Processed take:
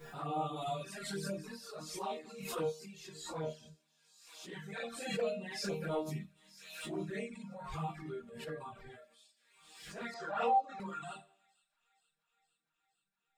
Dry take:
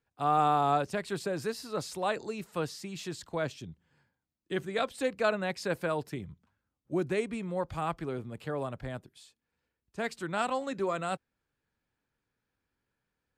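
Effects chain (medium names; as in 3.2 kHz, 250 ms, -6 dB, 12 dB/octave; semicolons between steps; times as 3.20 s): phase randomisation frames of 100 ms; 0.56–1.32 s: treble shelf 3.2 kHz +7.5 dB; chord resonator D#3 major, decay 0.64 s; 5.64–6.26 s: waveshaping leveller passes 1; reverb removal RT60 0.77 s; touch-sensitive flanger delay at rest 5.9 ms, full sweep at -47.5 dBFS; 10.14–10.80 s: cabinet simulation 390–5200 Hz, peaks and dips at 500 Hz +5 dB, 790 Hz +9 dB, 1.2 kHz +3 dB, 2.1 kHz -6 dB, 3.1 kHz -8 dB, 4.4 kHz -8 dB; on a send: feedback echo behind a high-pass 466 ms, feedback 73%, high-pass 3.5 kHz, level -19.5 dB; on the sum: swell ahead of each attack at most 54 dB/s; trim +13.5 dB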